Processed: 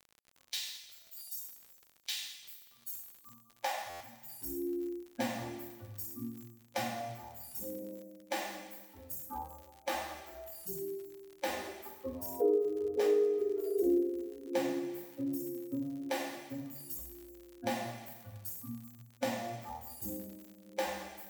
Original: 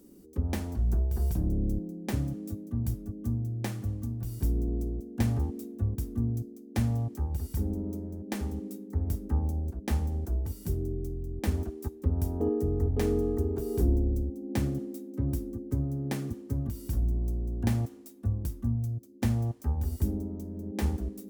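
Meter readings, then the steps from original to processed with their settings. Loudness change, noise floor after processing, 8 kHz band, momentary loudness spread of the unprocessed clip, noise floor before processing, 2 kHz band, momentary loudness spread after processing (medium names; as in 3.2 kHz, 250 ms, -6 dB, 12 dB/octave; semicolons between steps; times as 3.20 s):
-5.5 dB, -64 dBFS, +1.5 dB, 7 LU, -49 dBFS, +3.5 dB, 16 LU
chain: expander on every frequency bin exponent 3; high-pass sweep 3.9 kHz -> 440 Hz, 2.03–4.08 s; peaking EQ 9.8 kHz -5.5 dB 0.47 oct; two-slope reverb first 0.73 s, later 1.9 s, from -18 dB, DRR -9 dB; compression 2:1, threshold -41 dBFS, peak gain reduction 13 dB; crackle 68 per s -49 dBFS; buffer glitch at 3.89 s, samples 512, times 9; trim +5 dB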